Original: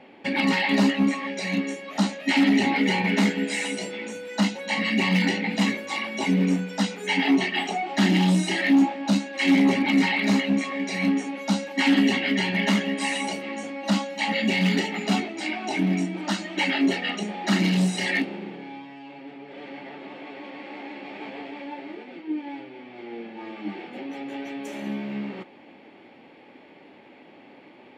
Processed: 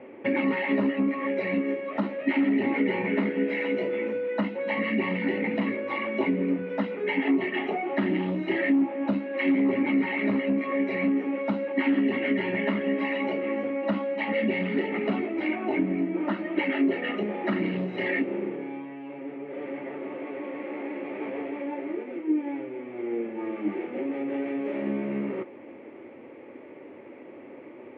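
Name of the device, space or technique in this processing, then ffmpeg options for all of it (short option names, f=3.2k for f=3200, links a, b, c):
bass amplifier: -filter_complex "[0:a]asettb=1/sr,asplit=3[a][b][c];[a]atrim=end=15.554[d];[b]atrim=start=15.55:end=16.56,asetpts=PTS-STARTPTS,afade=t=in:d=0.004:c=qsin,afade=t=out:st=1.006:d=0.004:c=qsin,lowpass=f=3.3k:p=1[e];[c]atrim=start=16.556[f];[d][e]acrossfade=d=0.004:c1=hsin:c2=qsin[g];[g][f]acrossfade=d=0.004:c1=qsin:c2=hsin,acompressor=threshold=-25dB:ratio=4,highpass=87,equalizer=f=90:t=q:w=4:g=5,equalizer=f=180:t=q:w=4:g=-9,equalizer=f=360:t=q:w=4:g=5,equalizer=f=520:t=q:w=4:g=5,equalizer=f=790:t=q:w=4:g=-9,equalizer=f=1.6k:t=q:w=4:g=-6,lowpass=f=2.1k:w=0.5412,lowpass=f=2.1k:w=1.3066,volume=4dB"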